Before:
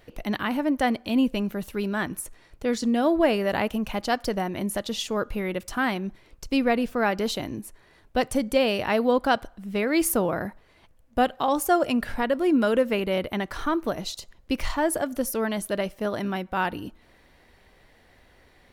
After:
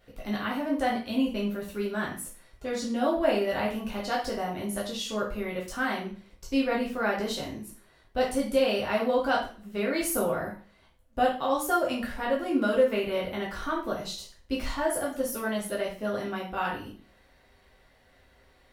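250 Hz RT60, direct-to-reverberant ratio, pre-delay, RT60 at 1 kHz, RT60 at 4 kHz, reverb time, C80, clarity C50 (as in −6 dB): 0.40 s, −5.0 dB, 5 ms, 0.40 s, 0.40 s, 0.40 s, 11.5 dB, 6.0 dB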